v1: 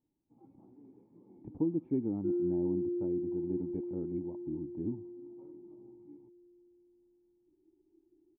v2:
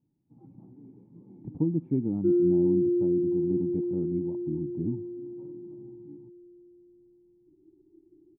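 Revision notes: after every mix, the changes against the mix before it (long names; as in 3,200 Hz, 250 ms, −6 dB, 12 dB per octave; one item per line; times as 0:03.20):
first sound: add low-shelf EQ 170 Hz +7 dB
second sound +7.0 dB
master: add parametric band 150 Hz +12 dB 1.2 octaves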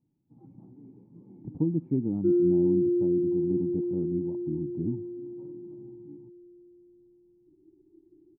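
speech: add high-shelf EQ 2,800 Hz −12 dB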